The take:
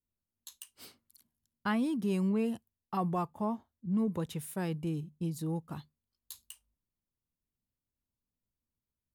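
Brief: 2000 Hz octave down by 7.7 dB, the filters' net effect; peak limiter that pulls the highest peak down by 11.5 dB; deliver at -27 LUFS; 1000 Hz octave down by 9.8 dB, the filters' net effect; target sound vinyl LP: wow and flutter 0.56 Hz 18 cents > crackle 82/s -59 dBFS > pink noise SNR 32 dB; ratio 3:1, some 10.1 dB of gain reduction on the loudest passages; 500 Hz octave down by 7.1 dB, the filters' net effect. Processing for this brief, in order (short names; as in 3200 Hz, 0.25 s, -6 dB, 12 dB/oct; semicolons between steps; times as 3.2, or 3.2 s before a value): bell 500 Hz -7.5 dB; bell 1000 Hz -8.5 dB; bell 2000 Hz -6.5 dB; compressor 3:1, threshold -43 dBFS; limiter -40 dBFS; wow and flutter 0.56 Hz 18 cents; crackle 82/s -59 dBFS; pink noise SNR 32 dB; gain +21.5 dB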